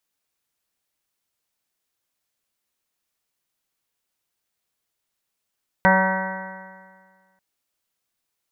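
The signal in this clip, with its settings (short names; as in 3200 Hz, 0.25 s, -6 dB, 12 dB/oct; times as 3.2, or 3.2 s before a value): stretched partials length 1.54 s, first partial 188 Hz, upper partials -16.5/-0.5/-4/1.5/-9.5/-14/0/-12/-2/-17.5 dB, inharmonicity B 0.00054, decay 1.73 s, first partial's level -18 dB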